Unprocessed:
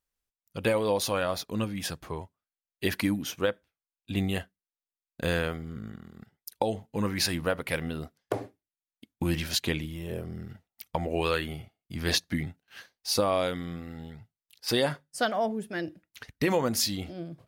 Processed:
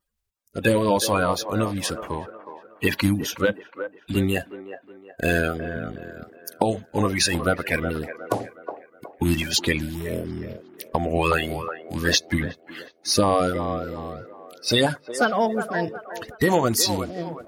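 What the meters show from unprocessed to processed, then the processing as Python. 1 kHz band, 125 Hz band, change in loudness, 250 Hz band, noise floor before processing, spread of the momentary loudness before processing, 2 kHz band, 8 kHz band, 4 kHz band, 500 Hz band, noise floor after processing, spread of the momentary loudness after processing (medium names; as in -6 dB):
+8.5 dB, +6.5 dB, +6.5 dB, +6.5 dB, under -85 dBFS, 17 LU, +8.0 dB, +7.5 dB, +5.5 dB, +6.0 dB, -56 dBFS, 18 LU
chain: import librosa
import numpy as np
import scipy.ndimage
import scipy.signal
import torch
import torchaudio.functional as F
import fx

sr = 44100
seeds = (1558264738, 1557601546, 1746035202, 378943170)

y = fx.spec_quant(x, sr, step_db=30)
y = fx.echo_wet_bandpass(y, sr, ms=366, feedback_pct=40, hz=780.0, wet_db=-8)
y = y * 10.0 ** (7.0 / 20.0)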